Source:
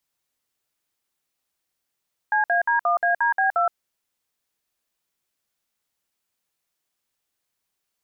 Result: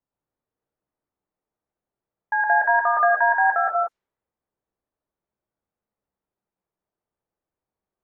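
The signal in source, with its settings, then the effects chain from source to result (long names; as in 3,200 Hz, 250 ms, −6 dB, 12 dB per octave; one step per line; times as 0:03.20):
touch tones "CAD1ADB2", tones 120 ms, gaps 57 ms, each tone −20 dBFS
low-pass that shuts in the quiet parts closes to 850 Hz, open at −17.5 dBFS
reverb whose tail is shaped and stops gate 210 ms rising, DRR −0.5 dB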